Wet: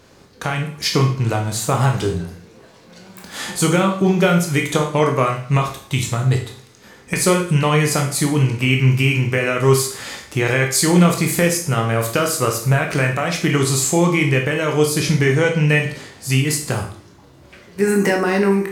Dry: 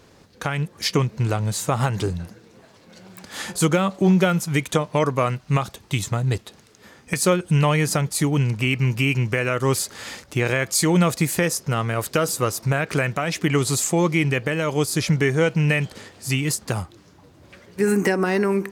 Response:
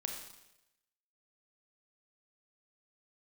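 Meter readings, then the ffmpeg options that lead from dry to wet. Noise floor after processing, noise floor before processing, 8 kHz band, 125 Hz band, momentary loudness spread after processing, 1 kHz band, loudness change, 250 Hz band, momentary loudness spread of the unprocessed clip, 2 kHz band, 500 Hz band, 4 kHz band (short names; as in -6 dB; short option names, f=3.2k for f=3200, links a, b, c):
-47 dBFS, -52 dBFS, +4.0 dB, +4.0 dB, 8 LU, +4.0 dB, +4.0 dB, +3.5 dB, 9 LU, +4.5 dB, +4.0 dB, +4.5 dB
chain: -filter_complex "[1:a]atrim=start_sample=2205,asetrate=79380,aresample=44100[a];[0:a][a]afir=irnorm=-1:irlink=0,volume=9dB"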